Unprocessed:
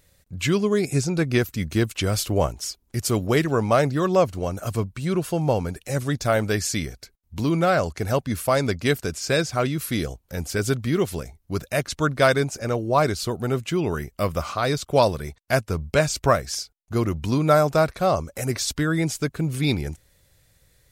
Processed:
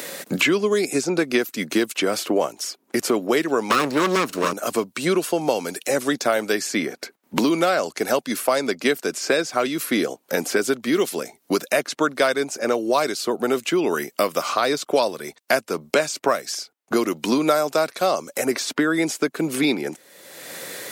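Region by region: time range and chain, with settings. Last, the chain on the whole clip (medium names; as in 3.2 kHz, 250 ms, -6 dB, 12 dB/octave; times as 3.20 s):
3.70–4.53 s: comb filter that takes the minimum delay 0.74 ms + Butterworth band-stop 790 Hz, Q 2.5 + waveshaping leveller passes 3
whole clip: high-pass 250 Hz 24 dB/octave; three bands compressed up and down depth 100%; trim +2 dB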